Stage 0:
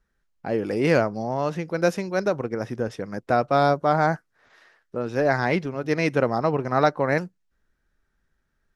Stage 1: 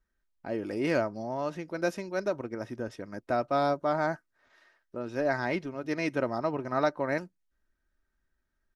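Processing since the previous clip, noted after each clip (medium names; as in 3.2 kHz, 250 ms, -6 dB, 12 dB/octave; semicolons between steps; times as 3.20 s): comb 3.2 ms, depth 39%; trim -8 dB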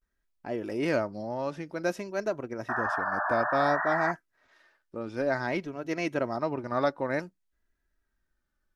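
painted sound noise, 2.70–4.12 s, 610–1900 Hz -30 dBFS; vibrato 0.55 Hz 93 cents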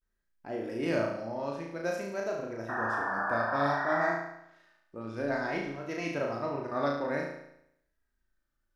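flutter echo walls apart 6.1 m, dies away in 0.77 s; trim -5.5 dB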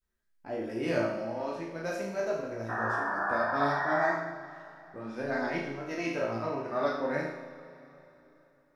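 chorus voices 2, 0.55 Hz, delay 15 ms, depth 3.5 ms; reverberation RT60 3.6 s, pre-delay 77 ms, DRR 14 dB; trim +3.5 dB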